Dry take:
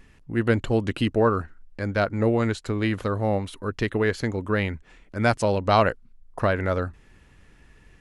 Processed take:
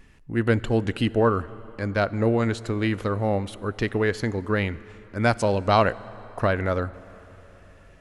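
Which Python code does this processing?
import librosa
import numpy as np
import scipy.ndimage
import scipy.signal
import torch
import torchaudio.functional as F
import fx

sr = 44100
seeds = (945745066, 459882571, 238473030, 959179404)

y = fx.rev_plate(x, sr, seeds[0], rt60_s=4.2, hf_ratio=0.6, predelay_ms=0, drr_db=18.0)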